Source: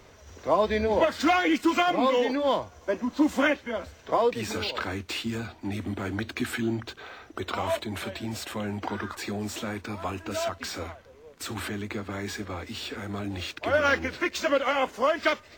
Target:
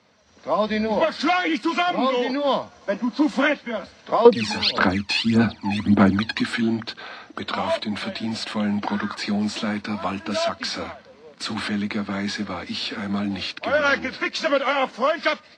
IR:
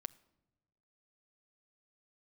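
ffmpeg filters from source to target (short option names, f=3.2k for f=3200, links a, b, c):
-filter_complex "[0:a]dynaudnorm=f=310:g=3:m=12.5dB,asettb=1/sr,asplit=3[a][b][c];[a]atrim=end=4.254[d];[b]atrim=start=4.25:end=6.41,asetpts=PTS-STARTPTS,afade=t=in:d=0.004:c=qsin,afade=t=out:st=2.156:d=0.004:c=qsin,aphaser=in_gain=1:out_gain=1:delay=1.2:decay=0.75:speed=1.7:type=sinusoidal[e];[c]atrim=start=6.406[f];[d][e]acrossfade=d=0.004:c1=hsin:c2=qsin[g];[g][f]acrossfade=d=0.004:c1=qsin:c2=hsin,highpass=160,equalizer=f=200:t=q:w=4:g=8,equalizer=f=390:t=q:w=4:g=-9,equalizer=f=4.3k:t=q:w=4:g=6,equalizer=f=6.8k:t=q:w=4:g=-7,lowpass=f=7.3k:w=0.5412,lowpass=f=7.3k:w=1.3066,volume=-6dB"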